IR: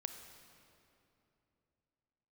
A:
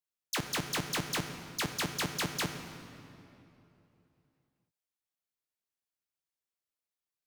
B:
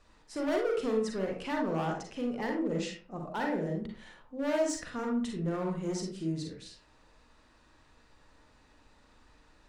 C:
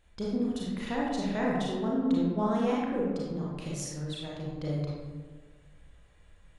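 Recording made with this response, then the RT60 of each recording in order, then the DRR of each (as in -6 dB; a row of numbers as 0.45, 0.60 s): A; 2.9, 0.45, 1.5 s; 7.0, 0.5, -5.0 dB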